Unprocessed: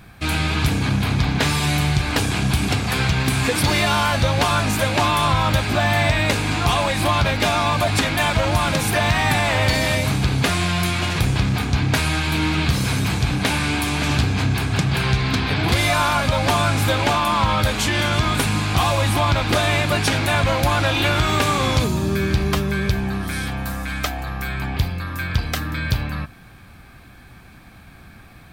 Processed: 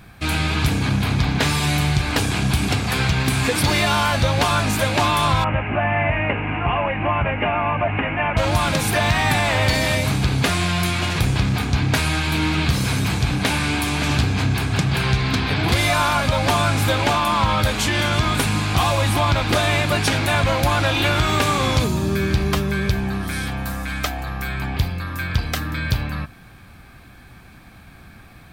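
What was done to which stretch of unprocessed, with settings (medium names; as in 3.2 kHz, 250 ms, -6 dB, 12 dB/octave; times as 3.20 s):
5.44–8.37 s: rippled Chebyshev low-pass 2.9 kHz, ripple 3 dB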